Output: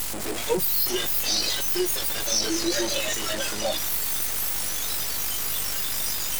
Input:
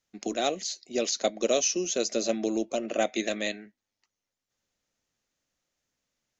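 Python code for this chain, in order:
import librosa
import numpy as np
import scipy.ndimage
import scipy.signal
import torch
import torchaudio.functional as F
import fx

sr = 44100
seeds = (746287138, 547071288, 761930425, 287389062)

y = fx.delta_mod(x, sr, bps=32000, step_db=-22.5)
y = scipy.signal.sosfilt(scipy.signal.butter(4, 340.0, 'highpass', fs=sr, output='sos'), y)
y = fx.high_shelf(y, sr, hz=2900.0, db=12.0)
y = fx.echo_swing(y, sr, ms=881, ratio=3, feedback_pct=47, wet_db=-13)
y = fx.fold_sine(y, sr, drive_db=19, ceiling_db=-8.5)
y = fx.add_hum(y, sr, base_hz=50, snr_db=16)
y = np.maximum(y, 0.0)
y = fx.noise_reduce_blind(y, sr, reduce_db=14)
y = fx.end_taper(y, sr, db_per_s=100.0)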